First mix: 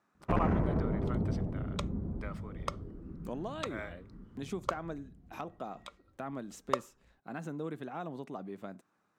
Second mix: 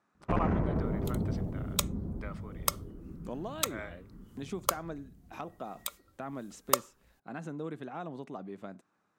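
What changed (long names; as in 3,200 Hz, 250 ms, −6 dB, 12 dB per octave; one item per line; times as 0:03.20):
speech: add low-pass filter 11,000 Hz
second sound: remove head-to-tape spacing loss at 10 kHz 28 dB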